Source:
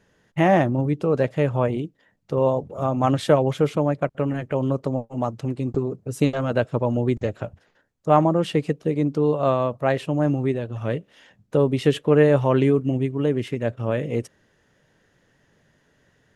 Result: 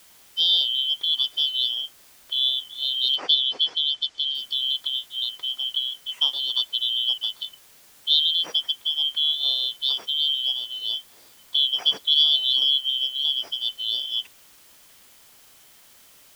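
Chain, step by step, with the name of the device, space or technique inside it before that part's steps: split-band scrambled radio (four frequency bands reordered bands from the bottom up 3412; band-pass 350–3300 Hz; white noise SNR 27 dB); 3.16–4.35 s: low-pass 6.7 kHz 24 dB/octave

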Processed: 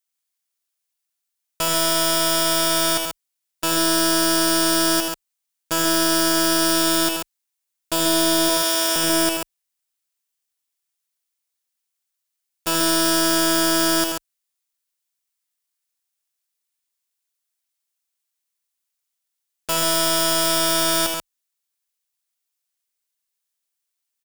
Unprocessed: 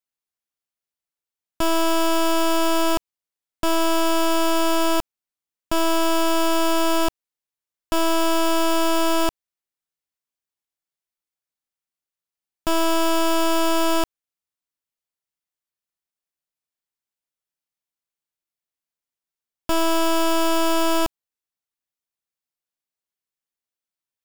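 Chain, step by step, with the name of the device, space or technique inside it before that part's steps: 8.49–8.96 s: high-pass 760 Hz 12 dB/octave; tilt EQ +3 dB/octave; octave pedal (harmony voices -12 st -6 dB); loudspeakers at several distances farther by 27 m -7 dB, 47 m -6 dB; trim -2 dB

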